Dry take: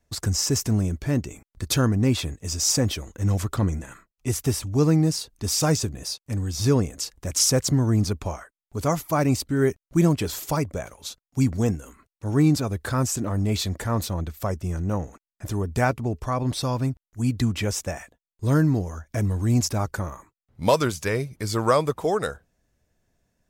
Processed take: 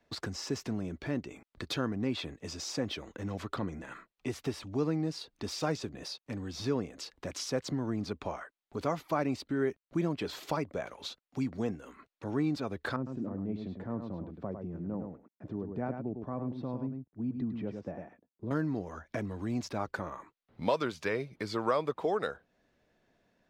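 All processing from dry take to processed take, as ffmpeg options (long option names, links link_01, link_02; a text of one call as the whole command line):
ffmpeg -i in.wav -filter_complex "[0:a]asettb=1/sr,asplit=3[link_01][link_02][link_03];[link_01]atrim=end=12.964[link_04];[link_02]atrim=start=12.96:end=18.51,asetpts=PTS-STARTPTS,afade=type=in:duration=0.004:curve=qsin,afade=type=out:start_time=5.546:duration=0.004:curve=qsin,bandpass=frequency=190:width_type=q:width=0.83,aecho=1:1:103:0.447,atrim=end_sample=244755[link_05];[link_03]atrim=start=18.506[link_06];[link_04][link_05]acrossfade=duration=0.004:curve1=hsin:curve2=qsin[link_07];[link_07][link_06]acrossfade=duration=0.004:curve1=qsin:curve2=hsin,equalizer=frequency=4100:width_type=o:width=0.64:gain=4,acompressor=threshold=-41dB:ratio=2,acrossover=split=180 4000:gain=0.178 1 0.112[link_08][link_09][link_10];[link_08][link_09][link_10]amix=inputs=3:normalize=0,volume=4.5dB" out.wav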